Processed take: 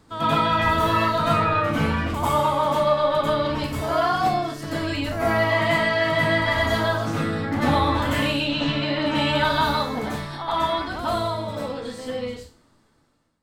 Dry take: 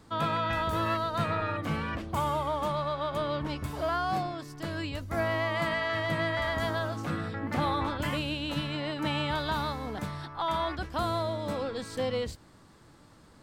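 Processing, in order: fade out at the end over 3.57 s; 8.35–9.06 s: low-pass 6.4 kHz 24 dB/octave; reverberation RT60 0.35 s, pre-delay 86 ms, DRR -9 dB

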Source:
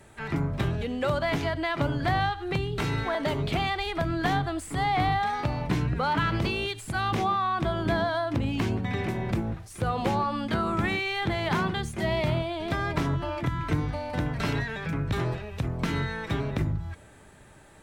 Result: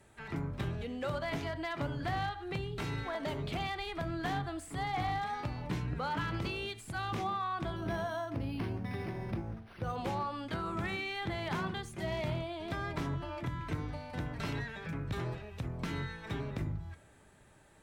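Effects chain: de-hum 74.04 Hz, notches 33; one-sided clip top -20 dBFS; 7.76–9.96 s: decimation joined by straight lines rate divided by 6×; trim -8.5 dB

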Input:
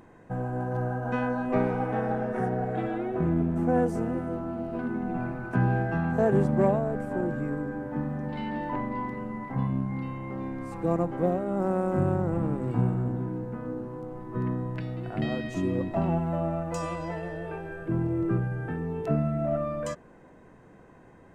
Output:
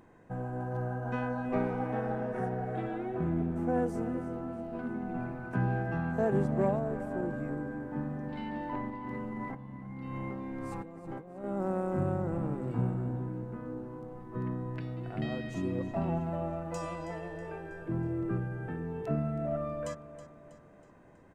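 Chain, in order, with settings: 8.89–11.44 s: compressor with a negative ratio -36 dBFS, ratio -1; feedback delay 322 ms, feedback 49%, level -14.5 dB; trim -5.5 dB

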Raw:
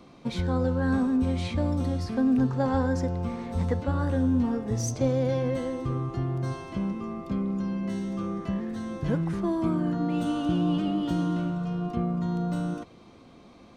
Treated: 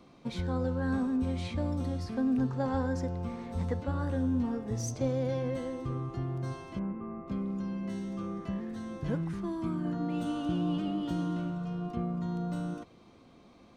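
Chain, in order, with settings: 6.79–7.28 s: low-pass 2 kHz 24 dB/octave; 9.27–9.85 s: peaking EQ 560 Hz -7.5 dB 1.1 oct; trim -5.5 dB

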